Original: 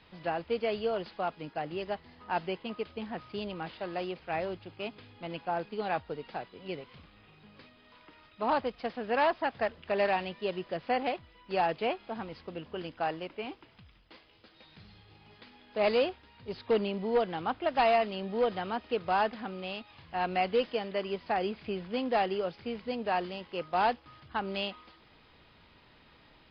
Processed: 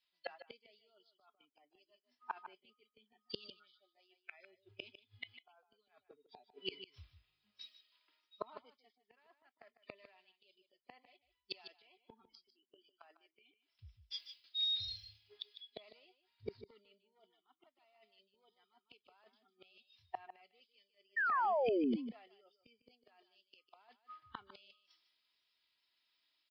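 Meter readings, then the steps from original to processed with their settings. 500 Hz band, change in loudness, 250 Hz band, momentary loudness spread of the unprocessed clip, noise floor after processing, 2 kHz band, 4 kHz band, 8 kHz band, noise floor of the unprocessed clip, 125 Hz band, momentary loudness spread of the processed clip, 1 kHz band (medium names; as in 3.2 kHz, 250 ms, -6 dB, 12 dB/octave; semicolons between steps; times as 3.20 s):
-16.0 dB, -7.5 dB, -10.0 dB, 13 LU, under -85 dBFS, -9.5 dB, -3.0 dB, no reading, -60 dBFS, -18.5 dB, 24 LU, -14.0 dB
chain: spectral noise reduction 26 dB; tilt EQ +4.5 dB/octave; comb 3 ms, depth 41%; reverse; compression 16:1, threshold -42 dBFS, peak gain reduction 23 dB; reverse; inverted gate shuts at -46 dBFS, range -31 dB; painted sound fall, 21.16–21.96 s, 210–1900 Hz -53 dBFS; on a send: delay 152 ms -9 dB; on the sum: three bands expanded up and down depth 100%; trim +11 dB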